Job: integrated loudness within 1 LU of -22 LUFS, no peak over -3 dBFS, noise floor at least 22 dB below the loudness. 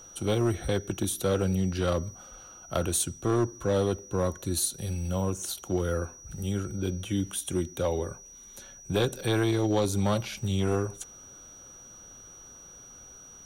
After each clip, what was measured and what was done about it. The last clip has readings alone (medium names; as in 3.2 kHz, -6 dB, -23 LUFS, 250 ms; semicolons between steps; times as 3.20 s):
clipped samples 1.0%; clipping level -19.0 dBFS; steady tone 5.8 kHz; tone level -47 dBFS; loudness -29.0 LUFS; peak level -19.0 dBFS; loudness target -22.0 LUFS
-> clip repair -19 dBFS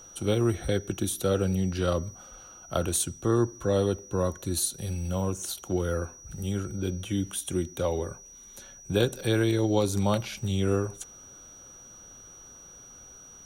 clipped samples 0.0%; steady tone 5.8 kHz; tone level -47 dBFS
-> band-stop 5.8 kHz, Q 30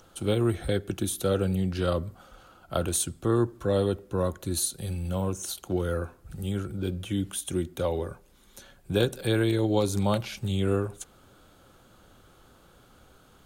steady tone not found; loudness -28.5 LUFS; peak level -10.0 dBFS; loudness target -22.0 LUFS
-> trim +6.5 dB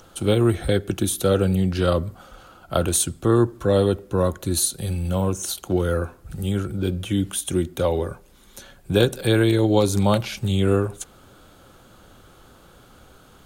loudness -22.0 LUFS; peak level -3.5 dBFS; noise floor -51 dBFS